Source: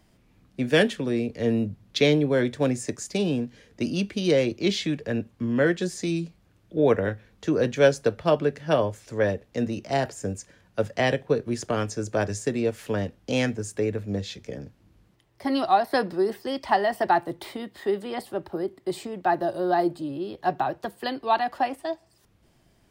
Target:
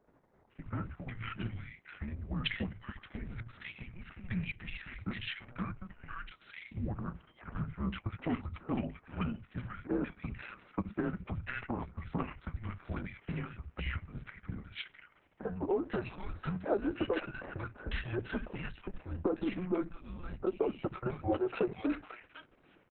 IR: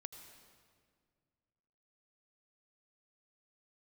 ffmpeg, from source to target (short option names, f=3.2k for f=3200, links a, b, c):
-filter_complex "[0:a]acompressor=threshold=-33dB:ratio=12,acrossover=split=400|1600[a][b][c];[a]adelay=70[d];[c]adelay=500[e];[d][b][e]amix=inputs=3:normalize=0,highpass=f=440:t=q:w=0.5412,highpass=f=440:t=q:w=1.307,lowpass=f=3.1k:t=q:w=0.5176,lowpass=f=3.1k:t=q:w=0.7071,lowpass=f=3.1k:t=q:w=1.932,afreqshift=-360,volume=7dB" -ar 48000 -c:a libopus -b:a 6k